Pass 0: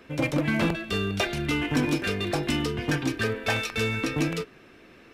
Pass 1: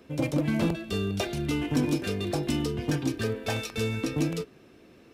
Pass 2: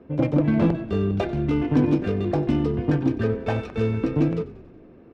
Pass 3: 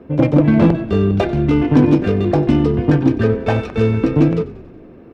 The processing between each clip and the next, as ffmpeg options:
ffmpeg -i in.wav -af "highpass=45,equalizer=frequency=1800:width=0.66:gain=-9.5" out.wav
ffmpeg -i in.wav -filter_complex "[0:a]adynamicsmooth=sensitivity=1:basefreq=1200,asplit=7[link_01][link_02][link_03][link_04][link_05][link_06][link_07];[link_02]adelay=93,afreqshift=-31,volume=-18dB[link_08];[link_03]adelay=186,afreqshift=-62,volume=-22.3dB[link_09];[link_04]adelay=279,afreqshift=-93,volume=-26.6dB[link_10];[link_05]adelay=372,afreqshift=-124,volume=-30.9dB[link_11];[link_06]adelay=465,afreqshift=-155,volume=-35.2dB[link_12];[link_07]adelay=558,afreqshift=-186,volume=-39.5dB[link_13];[link_01][link_08][link_09][link_10][link_11][link_12][link_13]amix=inputs=7:normalize=0,volume=6.5dB" out.wav
ffmpeg -i in.wav -af "asoftclip=type=hard:threshold=-12dB,volume=8dB" out.wav

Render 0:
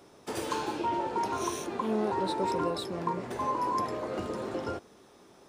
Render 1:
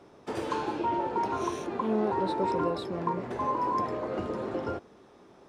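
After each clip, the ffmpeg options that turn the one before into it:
ffmpeg -i in.wav -af "aemphasis=mode=reproduction:type=75kf,volume=2dB" out.wav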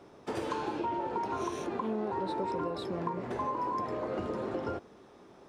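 ffmpeg -i in.wav -af "acompressor=threshold=-30dB:ratio=6" out.wav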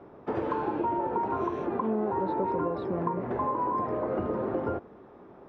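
ffmpeg -i in.wav -af "lowpass=1500,volume=5dB" out.wav

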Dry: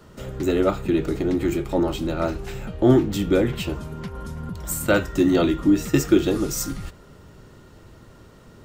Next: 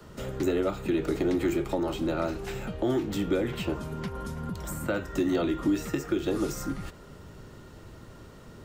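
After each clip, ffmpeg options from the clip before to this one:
ffmpeg -i in.wav -filter_complex "[0:a]acrossover=split=160|330|2100[link_01][link_02][link_03][link_04];[link_01]acompressor=threshold=-38dB:ratio=4[link_05];[link_02]acompressor=threshold=-33dB:ratio=4[link_06];[link_03]acompressor=threshold=-25dB:ratio=4[link_07];[link_04]acompressor=threshold=-42dB:ratio=4[link_08];[link_05][link_06][link_07][link_08]amix=inputs=4:normalize=0,alimiter=limit=-17dB:level=0:latency=1:release=270" out.wav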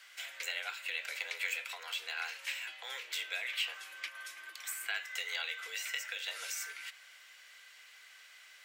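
ffmpeg -i in.wav -af "highpass=frequency=2100:width_type=q:width=2.4,afreqshift=150" out.wav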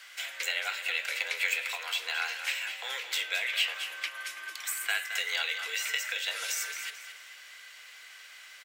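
ffmpeg -i in.wav -af "aecho=1:1:219|438|657|876:0.316|0.108|0.0366|0.0124,volume=6.5dB" out.wav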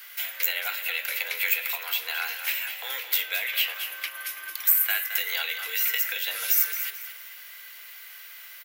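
ffmpeg -i in.wav -af "aexciter=amount=10.1:drive=4.4:freq=11000,volume=1.5dB" out.wav

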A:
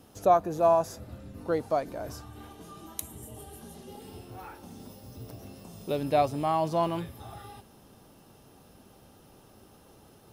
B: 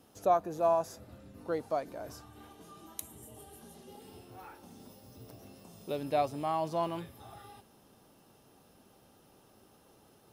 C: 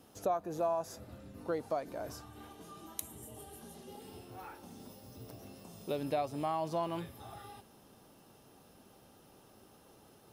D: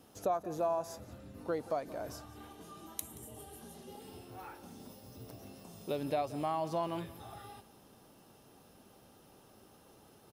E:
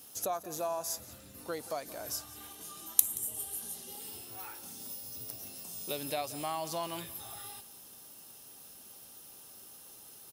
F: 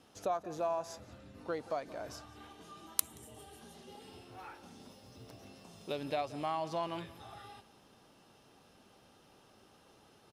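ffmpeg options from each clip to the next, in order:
ffmpeg -i in.wav -af "lowshelf=frequency=120:gain=-8,volume=-5dB" out.wav
ffmpeg -i in.wav -af "acompressor=threshold=-33dB:ratio=3,volume=1.5dB" out.wav
ffmpeg -i in.wav -af "aecho=1:1:177:0.126" out.wav
ffmpeg -i in.wav -af "crystalizer=i=8.5:c=0,volume=-5dB" out.wav
ffmpeg -i in.wav -af "adynamicsmooth=sensitivity=1.5:basefreq=3000,volume=1dB" out.wav

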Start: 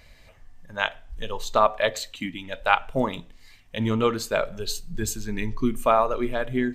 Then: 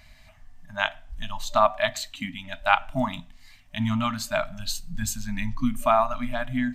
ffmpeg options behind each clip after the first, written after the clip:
ffmpeg -i in.wav -af "afftfilt=real='re*(1-between(b*sr/4096,280,590))':imag='im*(1-between(b*sr/4096,280,590))':win_size=4096:overlap=0.75" out.wav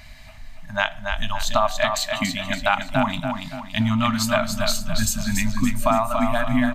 ffmpeg -i in.wav -filter_complex "[0:a]acompressor=threshold=-26dB:ratio=4,asplit=2[link_01][link_02];[link_02]aecho=0:1:284|568|852|1136|1420:0.531|0.223|0.0936|0.0393|0.0165[link_03];[link_01][link_03]amix=inputs=2:normalize=0,volume=8.5dB" out.wav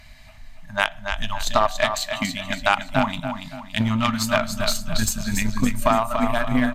ffmpeg -i in.wav -af "aeval=exprs='0.75*(cos(1*acos(clip(val(0)/0.75,-1,1)))-cos(1*PI/2))+0.0473*(cos(7*acos(clip(val(0)/0.75,-1,1)))-cos(7*PI/2))':channel_layout=same,volume=2.5dB" -ar 44100 -c:a libmp3lame -b:a 112k out.mp3

